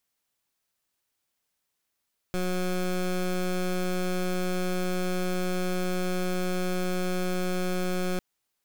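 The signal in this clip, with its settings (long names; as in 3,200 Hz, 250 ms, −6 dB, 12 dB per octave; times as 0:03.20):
pulse wave 182 Hz, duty 19% −27.5 dBFS 5.85 s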